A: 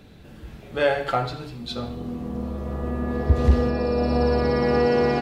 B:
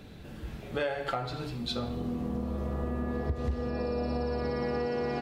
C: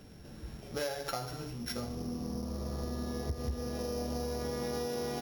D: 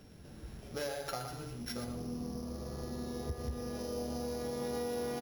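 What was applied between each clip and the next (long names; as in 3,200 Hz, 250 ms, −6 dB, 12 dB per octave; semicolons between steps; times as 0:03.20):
downward compressor 6 to 1, threshold −29 dBFS, peak gain reduction 16 dB
samples sorted by size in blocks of 8 samples; level −4.5 dB
single-tap delay 120 ms −8 dB; level −3 dB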